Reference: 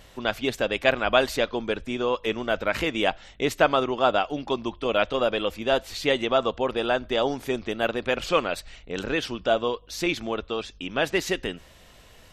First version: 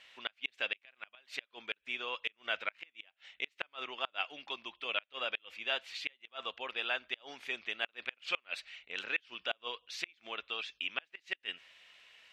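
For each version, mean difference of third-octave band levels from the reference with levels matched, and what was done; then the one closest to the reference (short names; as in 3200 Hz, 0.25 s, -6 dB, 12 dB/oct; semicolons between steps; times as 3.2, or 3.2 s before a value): 10.5 dB: vocal rider within 3 dB 2 s; band-pass 2500 Hz, Q 2.1; flipped gate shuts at -19 dBFS, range -33 dB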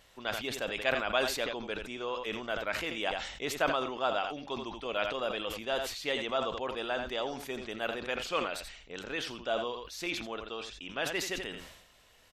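5.0 dB: low shelf 450 Hz -8.5 dB; on a send: echo 84 ms -13 dB; on the sum: sustainer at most 60 dB/s; gain -8 dB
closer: second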